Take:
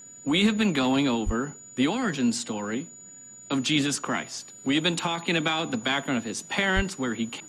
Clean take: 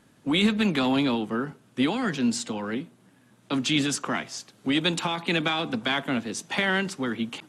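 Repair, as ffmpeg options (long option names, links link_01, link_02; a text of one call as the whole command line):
ffmpeg -i in.wav -filter_complex "[0:a]bandreject=frequency=6900:width=30,asplit=3[link_01][link_02][link_03];[link_01]afade=type=out:start_time=1.25:duration=0.02[link_04];[link_02]highpass=frequency=140:width=0.5412,highpass=frequency=140:width=1.3066,afade=type=in:start_time=1.25:duration=0.02,afade=type=out:start_time=1.37:duration=0.02[link_05];[link_03]afade=type=in:start_time=1.37:duration=0.02[link_06];[link_04][link_05][link_06]amix=inputs=3:normalize=0,asplit=3[link_07][link_08][link_09];[link_07]afade=type=out:start_time=6.75:duration=0.02[link_10];[link_08]highpass=frequency=140:width=0.5412,highpass=frequency=140:width=1.3066,afade=type=in:start_time=6.75:duration=0.02,afade=type=out:start_time=6.87:duration=0.02[link_11];[link_09]afade=type=in:start_time=6.87:duration=0.02[link_12];[link_10][link_11][link_12]amix=inputs=3:normalize=0" out.wav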